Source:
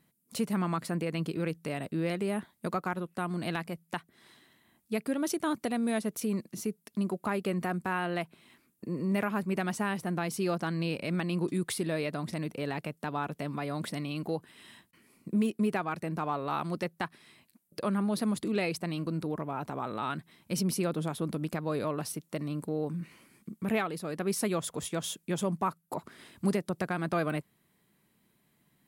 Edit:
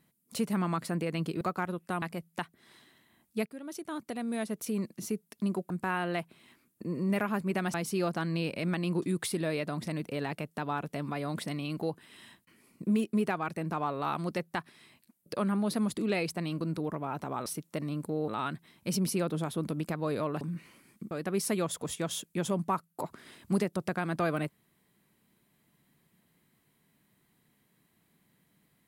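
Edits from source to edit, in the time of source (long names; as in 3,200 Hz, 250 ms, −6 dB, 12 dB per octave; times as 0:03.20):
0:01.41–0:02.69: remove
0:03.30–0:03.57: remove
0:05.01–0:06.54: fade in, from −15.5 dB
0:07.25–0:07.72: remove
0:09.76–0:10.20: remove
0:22.05–0:22.87: move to 0:19.92
0:23.57–0:24.04: remove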